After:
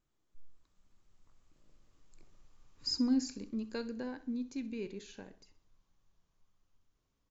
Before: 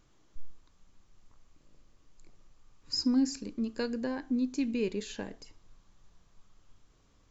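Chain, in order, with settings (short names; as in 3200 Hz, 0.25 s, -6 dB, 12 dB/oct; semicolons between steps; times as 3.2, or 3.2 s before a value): Doppler pass-by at 2.61, 12 m/s, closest 13 m; feedback echo 64 ms, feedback 38%, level -16.5 dB; AGC gain up to 6.5 dB; gain -9 dB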